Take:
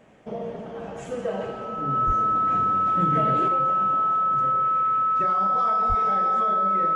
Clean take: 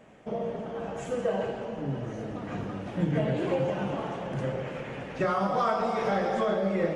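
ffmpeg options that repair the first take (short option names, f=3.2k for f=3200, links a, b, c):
-filter_complex "[0:a]bandreject=f=1.3k:w=30,asplit=3[a][b][c];[a]afade=t=out:st=2.06:d=0.02[d];[b]highpass=f=140:w=0.5412,highpass=f=140:w=1.3066,afade=t=in:st=2.06:d=0.02,afade=t=out:st=2.18:d=0.02[e];[c]afade=t=in:st=2.18:d=0.02[f];[d][e][f]amix=inputs=3:normalize=0,asplit=3[g][h][i];[g]afade=t=out:st=5.88:d=0.02[j];[h]highpass=f=140:w=0.5412,highpass=f=140:w=1.3066,afade=t=in:st=5.88:d=0.02,afade=t=out:st=6:d=0.02[k];[i]afade=t=in:st=6:d=0.02[l];[j][k][l]amix=inputs=3:normalize=0,asetnsamples=n=441:p=0,asendcmd='3.48 volume volume 6.5dB',volume=0dB"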